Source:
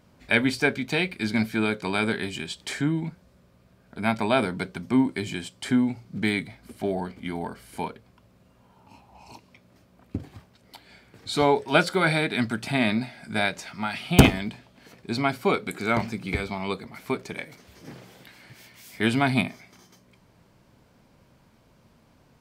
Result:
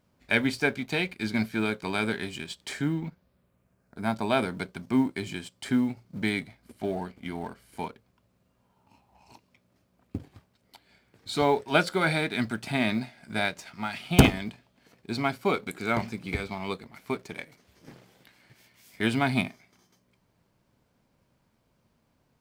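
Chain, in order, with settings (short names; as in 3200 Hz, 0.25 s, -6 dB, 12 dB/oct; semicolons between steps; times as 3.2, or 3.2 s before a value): G.711 law mismatch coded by A; 2.92–4.26 bell 12000 Hz -> 1900 Hz -9.5 dB 0.76 oct; gain -2.5 dB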